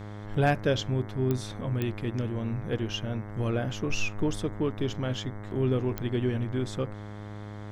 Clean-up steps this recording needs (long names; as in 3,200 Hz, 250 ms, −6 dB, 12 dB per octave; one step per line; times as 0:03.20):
clipped peaks rebuilt −14 dBFS
click removal
hum removal 104 Hz, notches 21